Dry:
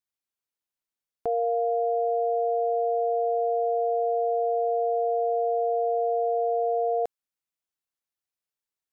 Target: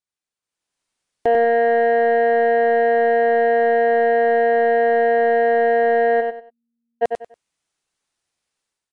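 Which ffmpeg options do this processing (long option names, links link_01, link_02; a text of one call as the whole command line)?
ffmpeg -i in.wav -filter_complex "[0:a]dynaudnorm=framelen=410:gausssize=3:maxgain=14dB,asoftclip=type=tanh:threshold=-10.5dB,asplit=3[link_01][link_02][link_03];[link_01]afade=type=out:start_time=6.2:duration=0.02[link_04];[link_02]asuperpass=centerf=170:order=8:qfactor=5.1,afade=type=in:start_time=6.2:duration=0.02,afade=type=out:start_time=7.01:duration=0.02[link_05];[link_03]afade=type=in:start_time=7.01:duration=0.02[link_06];[link_04][link_05][link_06]amix=inputs=3:normalize=0,aecho=1:1:95|190|285:0.531|0.133|0.0332" -ar 22050 -c:a aac -b:a 64k out.aac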